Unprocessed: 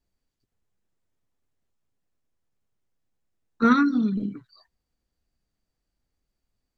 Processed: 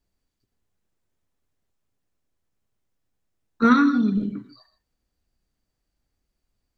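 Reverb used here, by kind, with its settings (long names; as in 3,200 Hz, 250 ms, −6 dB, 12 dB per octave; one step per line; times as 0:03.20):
reverb whose tail is shaped and stops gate 180 ms flat, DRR 9.5 dB
level +2 dB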